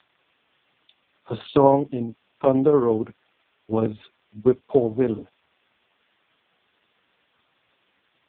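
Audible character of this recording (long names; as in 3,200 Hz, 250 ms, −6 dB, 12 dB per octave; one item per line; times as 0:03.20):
tremolo saw down 11 Hz, depth 35%
a quantiser's noise floor 10 bits, dither triangular
AMR narrowband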